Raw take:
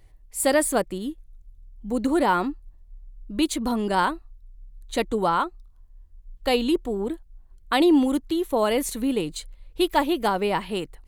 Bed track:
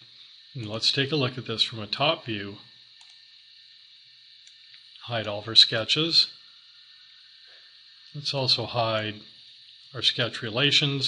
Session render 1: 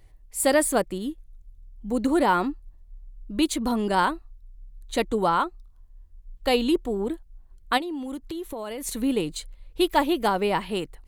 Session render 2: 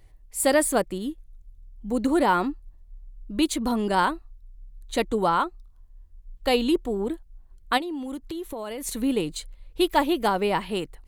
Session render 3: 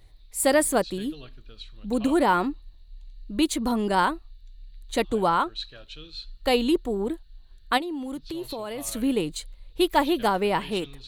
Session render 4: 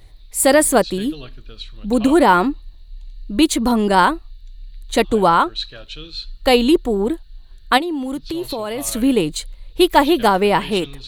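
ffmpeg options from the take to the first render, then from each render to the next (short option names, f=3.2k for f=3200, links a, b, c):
-filter_complex "[0:a]asplit=3[a][b][c];[a]afade=t=out:st=7.77:d=0.02[d];[b]acompressor=threshold=-29dB:ratio=16:attack=3.2:release=140:knee=1:detection=peak,afade=t=in:st=7.77:d=0.02,afade=t=out:st=8.86:d=0.02[e];[c]afade=t=in:st=8.86:d=0.02[f];[d][e][f]amix=inputs=3:normalize=0"
-af anull
-filter_complex "[1:a]volume=-20dB[a];[0:a][a]amix=inputs=2:normalize=0"
-af "volume=8.5dB,alimiter=limit=-1dB:level=0:latency=1"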